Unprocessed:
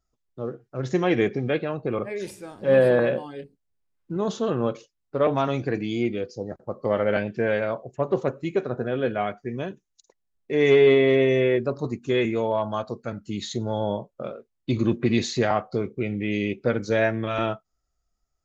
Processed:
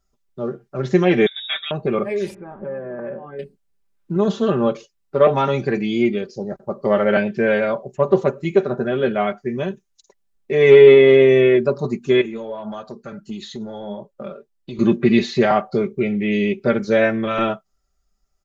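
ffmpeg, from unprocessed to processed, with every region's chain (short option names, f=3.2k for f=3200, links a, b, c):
-filter_complex "[0:a]asettb=1/sr,asplit=3[a][b][c];[a]atrim=end=1.264[d];[b]atrim=start=1.26:end=1.71,asetpts=PTS-STARTPTS,afade=t=in:d=0.004:c=qsin,afade=t=out:st=0.446:d=0.004:c=qsin,lowshelf=f=460:g=-11.5,adynamicsmooth=sensitivity=5:basefreq=1.6k,lowpass=f=3.3k:t=q:w=0.5098,lowpass=f=3.3k:t=q:w=0.6013,lowpass=f=3.3k:t=q:w=0.9,lowpass=f=3.3k:t=q:w=2.563,afreqshift=-3900[e];[c]atrim=start=1.706[f];[d][e]acrossfade=d=0.004:c1=hsin:c2=qsin[g];[g][f]acrossfade=d=0.004:c1=qsin:c2=hsin,asettb=1/sr,asplit=3[h][i][j];[h]atrim=end=2.344[k];[i]atrim=start=2.34:end=3.39,asetpts=PTS-STARTPTS,afade=t=in:d=0.004:c=qsin,afade=t=out:st=1.046:d=0.004:c=qsin,lowpass=f=1.7k:w=0.5412,lowpass=f=1.7k:w=1.3066,acompressor=threshold=-35dB:ratio=4:attack=3.2:release=140:knee=1:detection=peak[l];[j]atrim=start=3.386[m];[k][l]acrossfade=d=0.004:c1=hsin:c2=qsin[n];[n][m]acrossfade=d=0.004:c1=qsin:c2=hsin,asettb=1/sr,asplit=3[o][p][q];[o]atrim=end=12.214[r];[p]atrim=start=12.21:end=14.79,asetpts=PTS-STARTPTS,afade=t=in:d=0.004:c=qsin,afade=t=out:st=2.576:d=0.004:c=qsin,bandreject=f=2.2k:w=14,acompressor=threshold=-28dB:ratio=4:attack=3.2:release=140:knee=1:detection=peak,flanger=delay=1.8:depth=5.5:regen=52:speed=1.6:shape=triangular[s];[q]atrim=start=14.786[t];[r][s]acrossfade=d=0.004:c1=hsin:c2=qsin[u];[u][t]acrossfade=d=0.004:c1=qsin:c2=hsin,acrossover=split=4100[v][w];[w]acompressor=threshold=-52dB:ratio=4:attack=1:release=60[x];[v][x]amix=inputs=2:normalize=0,aecho=1:1:5.1:0.71,volume=4.5dB"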